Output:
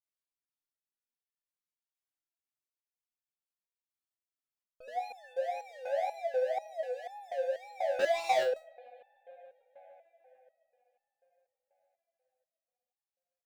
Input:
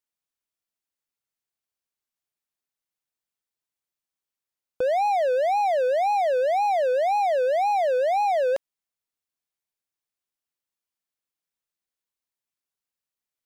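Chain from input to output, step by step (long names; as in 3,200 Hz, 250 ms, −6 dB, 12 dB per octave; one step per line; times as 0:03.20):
bucket-brigade delay 149 ms, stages 4,096, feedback 83%, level −16 dB
0:07.99–0:08.43: leveller curve on the samples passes 5
step-sequenced resonator 4.1 Hz 93–880 Hz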